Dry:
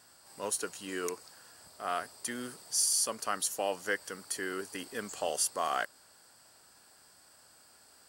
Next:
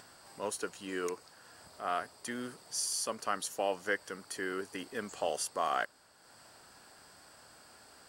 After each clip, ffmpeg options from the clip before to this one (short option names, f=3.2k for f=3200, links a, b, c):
-af "aemphasis=mode=reproduction:type=cd,acompressor=mode=upward:threshold=-49dB:ratio=2.5"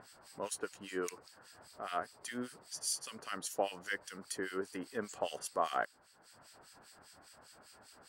-filter_complex "[0:a]acrossover=split=1700[a][b];[a]aeval=exprs='val(0)*(1-1/2+1/2*cos(2*PI*5*n/s))':c=same[c];[b]aeval=exprs='val(0)*(1-1/2-1/2*cos(2*PI*5*n/s))':c=same[d];[c][d]amix=inputs=2:normalize=0,volume=2dB"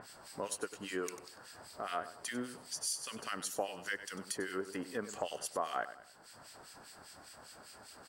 -af "aecho=1:1:96|192|288:0.188|0.0527|0.0148,acompressor=threshold=-43dB:ratio=2,volume=5dB"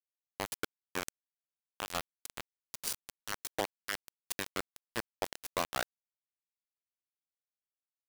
-af "acrusher=bits=4:mix=0:aa=0.000001,volume=1.5dB"